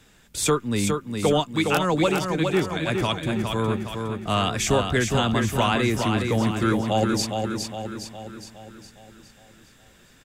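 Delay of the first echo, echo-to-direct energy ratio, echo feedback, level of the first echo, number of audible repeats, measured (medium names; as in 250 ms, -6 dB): 412 ms, -3.5 dB, 52%, -5.0 dB, 6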